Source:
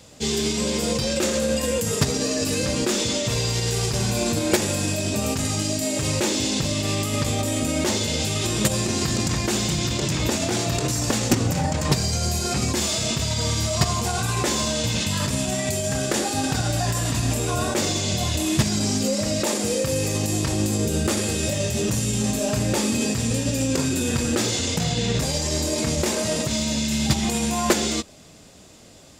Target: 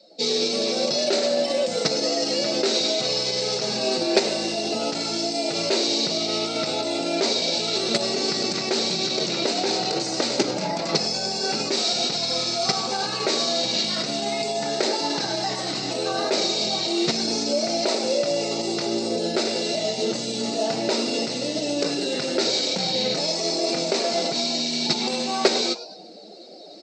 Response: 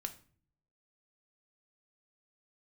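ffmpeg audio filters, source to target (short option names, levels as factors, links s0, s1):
-filter_complex "[0:a]highpass=f=210:w=0.5412,highpass=f=210:w=1.3066,equalizer=f=240:t=q:w=4:g=-10,equalizer=f=960:t=q:w=4:g=-10,equalizer=f=1600:t=q:w=4:g=-6,equalizer=f=2800:t=q:w=4:g=-7,equalizer=f=4000:t=q:w=4:g=8,lowpass=f=5100:w=0.5412,lowpass=f=5100:w=1.3066,asetrate=48000,aresample=44100,asplit=4[s0][s1][s2][s3];[s1]adelay=102,afreqshift=130,volume=0.178[s4];[s2]adelay=204,afreqshift=260,volume=0.0589[s5];[s3]adelay=306,afreqshift=390,volume=0.0193[s6];[s0][s4][s5][s6]amix=inputs=4:normalize=0,afftdn=nr=15:nf=-48,areverse,acompressor=mode=upward:threshold=0.0158:ratio=2.5,areverse,volume=1.41"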